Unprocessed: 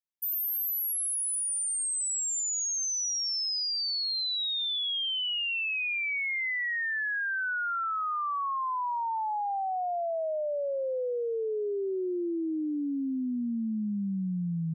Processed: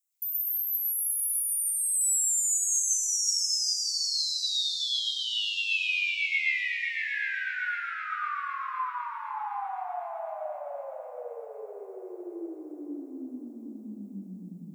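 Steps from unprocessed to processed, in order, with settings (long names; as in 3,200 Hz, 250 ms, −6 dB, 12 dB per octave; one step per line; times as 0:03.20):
first-order pre-emphasis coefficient 0.97
downward compressor 2.5 to 1, threshold −51 dBFS, peak gain reduction 16 dB
echo machine with several playback heads 254 ms, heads second and third, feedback 47%, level −9 dB
convolution reverb RT60 1.1 s, pre-delay 109 ms, DRR −5.5 dB
level +8.5 dB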